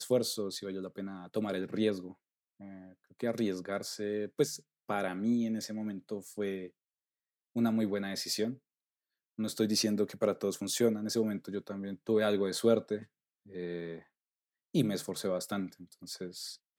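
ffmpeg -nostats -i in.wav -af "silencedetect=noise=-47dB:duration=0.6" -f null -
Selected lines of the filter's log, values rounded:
silence_start: 6.68
silence_end: 7.56 | silence_duration: 0.87
silence_start: 8.55
silence_end: 9.39 | silence_duration: 0.84
silence_start: 14.00
silence_end: 14.74 | silence_duration: 0.75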